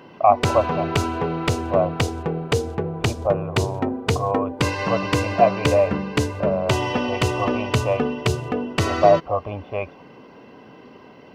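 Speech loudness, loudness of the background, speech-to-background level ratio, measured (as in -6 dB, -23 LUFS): -23.5 LUFS, -24.0 LUFS, 0.5 dB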